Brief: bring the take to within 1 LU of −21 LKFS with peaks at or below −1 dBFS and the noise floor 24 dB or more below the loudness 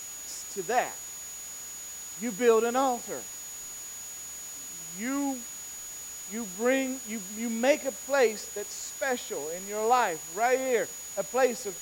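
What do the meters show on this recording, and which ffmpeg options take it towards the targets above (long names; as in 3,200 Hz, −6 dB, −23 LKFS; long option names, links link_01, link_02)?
interfering tone 6,800 Hz; level of the tone −39 dBFS; background noise floor −41 dBFS; target noise floor −54 dBFS; integrated loudness −30.0 LKFS; sample peak −11.0 dBFS; target loudness −21.0 LKFS
→ -af "bandreject=frequency=6800:width=30"
-af "afftdn=noise_reduction=13:noise_floor=-41"
-af "volume=9dB"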